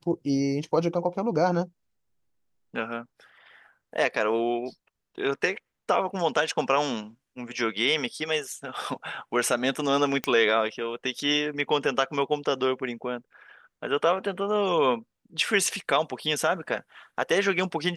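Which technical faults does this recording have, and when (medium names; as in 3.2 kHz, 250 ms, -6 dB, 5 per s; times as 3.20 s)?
10.24 s: pop -11 dBFS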